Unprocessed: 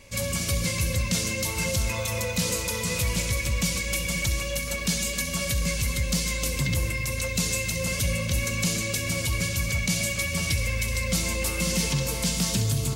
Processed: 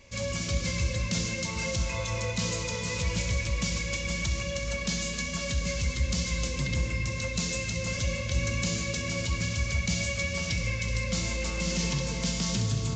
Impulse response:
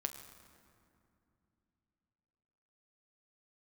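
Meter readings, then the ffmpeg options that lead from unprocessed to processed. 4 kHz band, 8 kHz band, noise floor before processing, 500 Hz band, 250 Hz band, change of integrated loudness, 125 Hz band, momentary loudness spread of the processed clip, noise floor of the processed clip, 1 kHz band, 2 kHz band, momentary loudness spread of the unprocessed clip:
-3.5 dB, -6.0 dB, -31 dBFS, -3.0 dB, -3.0 dB, -4.0 dB, -2.5 dB, 2 LU, -34 dBFS, -3.0 dB, -3.5 dB, 2 LU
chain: -filter_complex "[1:a]atrim=start_sample=2205[a];[0:a][a]afir=irnorm=-1:irlink=0,aresample=16000,aresample=44100,volume=-3dB"

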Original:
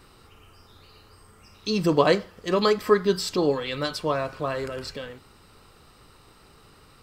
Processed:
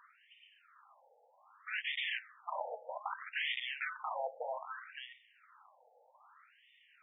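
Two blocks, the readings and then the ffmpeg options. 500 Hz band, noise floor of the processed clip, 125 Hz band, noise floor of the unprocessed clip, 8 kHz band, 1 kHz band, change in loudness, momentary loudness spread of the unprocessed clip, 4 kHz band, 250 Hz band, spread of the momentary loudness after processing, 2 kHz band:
-22.5 dB, -69 dBFS, under -40 dB, -55 dBFS, under -40 dB, -12.0 dB, -15.0 dB, 14 LU, -10.0 dB, under -40 dB, 13 LU, -5.0 dB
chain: -af "aeval=exprs='(mod(14.1*val(0)+1,2)-1)/14.1':c=same,afftfilt=real='re*between(b*sr/1024,620*pow(2600/620,0.5+0.5*sin(2*PI*0.63*pts/sr))/1.41,620*pow(2600/620,0.5+0.5*sin(2*PI*0.63*pts/sr))*1.41)':imag='im*between(b*sr/1024,620*pow(2600/620,0.5+0.5*sin(2*PI*0.63*pts/sr))/1.41,620*pow(2600/620,0.5+0.5*sin(2*PI*0.63*pts/sr))*1.41)':win_size=1024:overlap=0.75,volume=-2dB"

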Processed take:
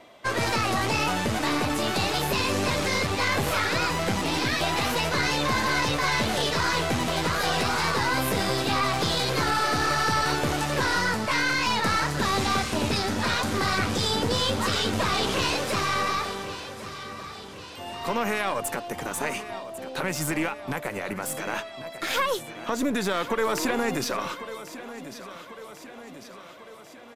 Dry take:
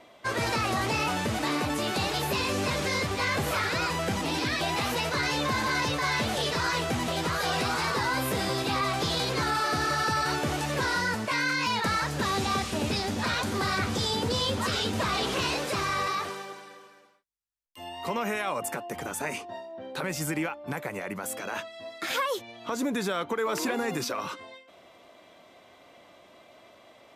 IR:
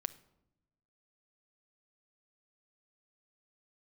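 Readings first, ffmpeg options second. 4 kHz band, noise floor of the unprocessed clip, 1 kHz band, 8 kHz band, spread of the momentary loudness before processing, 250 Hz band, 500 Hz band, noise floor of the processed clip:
+3.0 dB, -55 dBFS, +3.0 dB, +3.5 dB, 8 LU, +3.0 dB, +3.0 dB, -44 dBFS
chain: -af "aecho=1:1:1096|2192|3288|4384|5480|6576:0.211|0.125|0.0736|0.0434|0.0256|0.0151,aeval=exprs='0.188*(cos(1*acos(clip(val(0)/0.188,-1,1)))-cos(1*PI/2))+0.0335*(cos(2*acos(clip(val(0)/0.188,-1,1)))-cos(2*PI/2))+0.00668*(cos(6*acos(clip(val(0)/0.188,-1,1)))-cos(6*PI/2))':c=same,volume=2.5dB"

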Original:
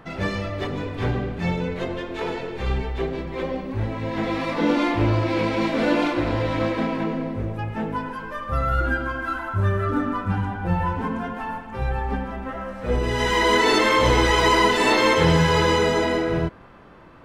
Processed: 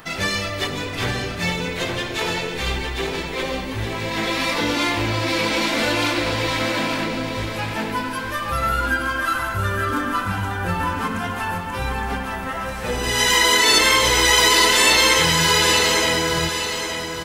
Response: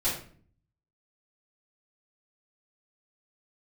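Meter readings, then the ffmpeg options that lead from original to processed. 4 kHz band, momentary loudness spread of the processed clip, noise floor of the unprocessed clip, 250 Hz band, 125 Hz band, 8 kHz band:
+10.0 dB, 13 LU, -38 dBFS, -2.5 dB, -3.0 dB, +15.0 dB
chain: -filter_complex "[0:a]acompressor=threshold=-23dB:ratio=2,crystalizer=i=10:c=0,asplit=2[a][b];[b]aecho=0:1:867|1734|2601|3468|4335:0.422|0.169|0.0675|0.027|0.0108[c];[a][c]amix=inputs=2:normalize=0,volume=-1dB"

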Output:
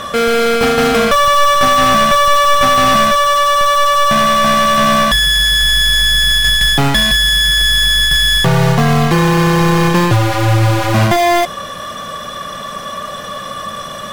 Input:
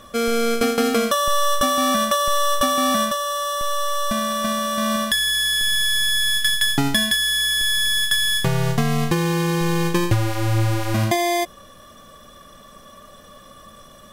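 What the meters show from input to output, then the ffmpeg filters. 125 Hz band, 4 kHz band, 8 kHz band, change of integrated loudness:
+9.0 dB, +8.5 dB, +4.0 dB, +9.0 dB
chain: -filter_complex "[0:a]asplit=2[a][b];[b]highpass=f=720:p=1,volume=26dB,asoftclip=type=tanh:threshold=-7dB[c];[a][c]amix=inputs=2:normalize=0,lowpass=f=3.2k:p=1,volume=-6dB,lowshelf=f=210:t=q:w=1.5:g=6,volume=3.5dB"

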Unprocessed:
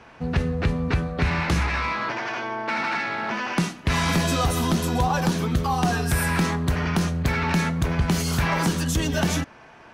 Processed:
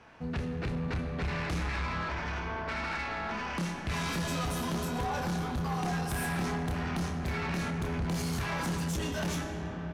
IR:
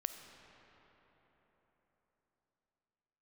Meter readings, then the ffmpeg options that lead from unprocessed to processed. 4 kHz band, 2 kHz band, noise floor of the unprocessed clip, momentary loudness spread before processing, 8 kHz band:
-9.5 dB, -9.5 dB, -48 dBFS, 5 LU, -10.0 dB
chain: -filter_complex "[0:a]asplit=2[a][b];[b]adelay=29,volume=-6dB[c];[a][c]amix=inputs=2:normalize=0[d];[1:a]atrim=start_sample=2205,asetrate=26901,aresample=44100[e];[d][e]afir=irnorm=-1:irlink=0,asoftclip=type=tanh:threshold=-19dB,volume=-9dB"

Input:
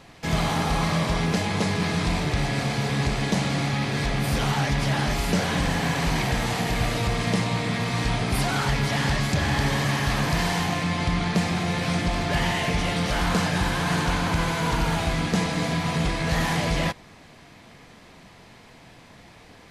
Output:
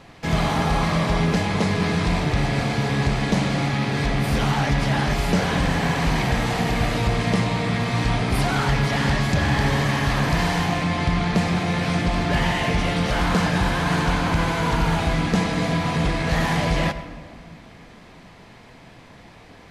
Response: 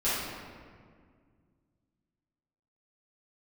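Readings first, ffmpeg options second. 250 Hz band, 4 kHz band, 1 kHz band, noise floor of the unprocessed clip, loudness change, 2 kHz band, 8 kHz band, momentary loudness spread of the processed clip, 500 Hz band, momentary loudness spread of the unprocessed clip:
+3.5 dB, +0.5 dB, +3.0 dB, -49 dBFS, +2.5 dB, +2.0 dB, -1.5 dB, 2 LU, +3.5 dB, 2 LU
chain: -filter_complex "[0:a]highshelf=f=4.3k:g=-6.5,asplit=2[a][b];[1:a]atrim=start_sample=2205,adelay=82[c];[b][c]afir=irnorm=-1:irlink=0,volume=-23.5dB[d];[a][d]amix=inputs=2:normalize=0,volume=3dB"

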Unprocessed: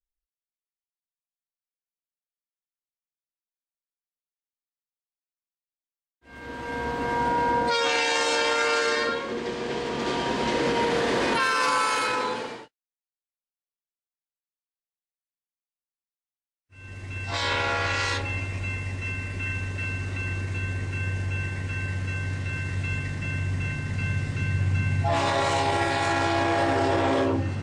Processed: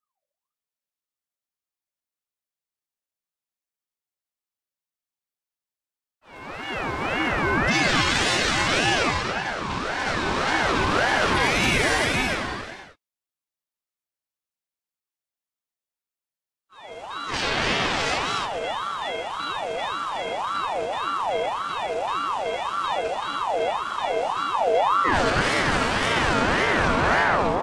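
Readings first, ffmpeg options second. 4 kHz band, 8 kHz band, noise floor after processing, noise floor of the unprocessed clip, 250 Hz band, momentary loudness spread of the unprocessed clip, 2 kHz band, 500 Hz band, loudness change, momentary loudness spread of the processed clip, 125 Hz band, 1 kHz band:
+4.5 dB, +3.5 dB, under -85 dBFS, under -85 dBFS, +1.5 dB, 8 LU, +4.5 dB, +2.0 dB, +3.0 dB, 9 LU, -5.0 dB, +3.5 dB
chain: -af "aeval=exprs='0.282*(cos(1*acos(clip(val(0)/0.282,-1,1)))-cos(1*PI/2))+0.00794*(cos(6*acos(clip(val(0)/0.282,-1,1)))-cos(6*PI/2))':c=same,aecho=1:1:212.8|277:0.316|0.501,aeval=exprs='val(0)*sin(2*PI*910*n/s+910*0.4/1.8*sin(2*PI*1.8*n/s))':c=same,volume=4dB"

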